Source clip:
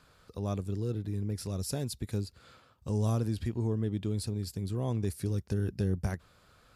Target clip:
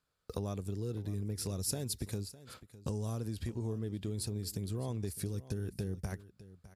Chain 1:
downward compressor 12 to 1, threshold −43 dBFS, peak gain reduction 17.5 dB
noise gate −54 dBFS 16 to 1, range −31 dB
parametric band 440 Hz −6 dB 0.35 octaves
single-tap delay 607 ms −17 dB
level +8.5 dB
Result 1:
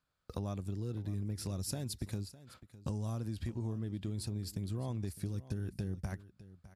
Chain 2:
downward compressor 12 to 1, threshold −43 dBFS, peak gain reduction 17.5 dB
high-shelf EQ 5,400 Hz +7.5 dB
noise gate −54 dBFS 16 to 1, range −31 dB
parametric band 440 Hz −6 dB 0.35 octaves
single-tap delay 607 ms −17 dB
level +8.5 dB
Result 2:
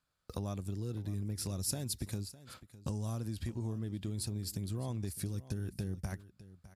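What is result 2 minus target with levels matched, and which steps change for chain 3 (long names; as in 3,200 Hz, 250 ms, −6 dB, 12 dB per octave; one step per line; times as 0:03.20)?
500 Hz band −4.0 dB
change: parametric band 440 Hz +2 dB 0.35 octaves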